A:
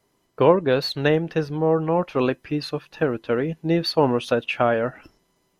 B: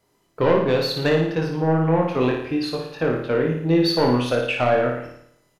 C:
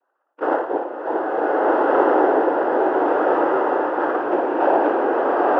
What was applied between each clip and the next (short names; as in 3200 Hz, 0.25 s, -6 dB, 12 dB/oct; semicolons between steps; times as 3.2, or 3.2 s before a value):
soft clip -12.5 dBFS, distortion -14 dB; doubler 24 ms -5 dB; on a send: flutter echo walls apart 9.7 m, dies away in 0.7 s
brick-wall FIR band-pass 460–1400 Hz; noise vocoder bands 8; bloom reverb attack 1.58 s, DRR -8 dB